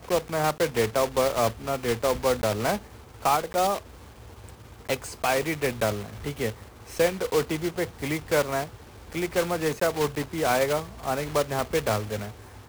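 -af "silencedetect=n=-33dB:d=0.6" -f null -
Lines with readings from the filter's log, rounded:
silence_start: 3.78
silence_end: 4.49 | silence_duration: 0.70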